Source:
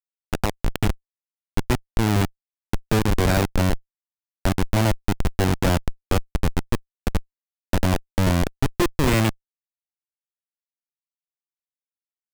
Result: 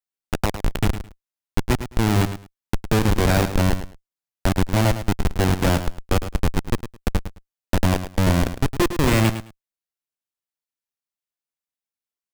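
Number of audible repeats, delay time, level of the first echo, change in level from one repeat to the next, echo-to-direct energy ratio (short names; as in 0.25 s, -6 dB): 2, 0.107 s, -11.0 dB, -15.0 dB, -11.0 dB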